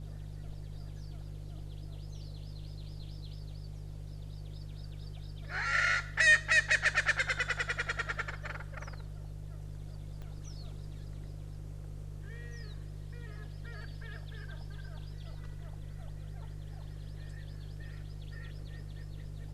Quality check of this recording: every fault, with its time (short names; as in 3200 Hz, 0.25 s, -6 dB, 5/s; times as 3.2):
hum 50 Hz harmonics 3 -43 dBFS
10.22 pop -35 dBFS